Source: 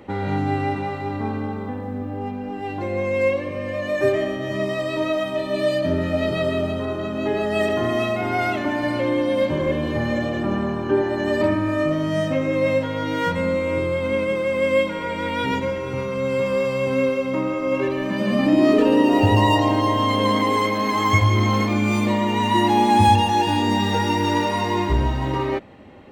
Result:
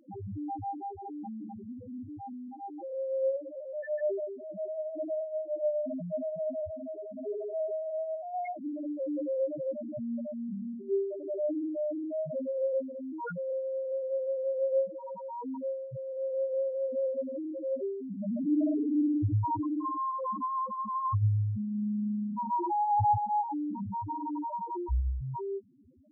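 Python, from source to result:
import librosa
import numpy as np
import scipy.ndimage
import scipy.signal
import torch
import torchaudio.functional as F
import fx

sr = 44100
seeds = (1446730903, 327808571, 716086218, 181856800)

y = fx.spec_topn(x, sr, count=1)
y = y * 10.0 ** (-4.0 / 20.0)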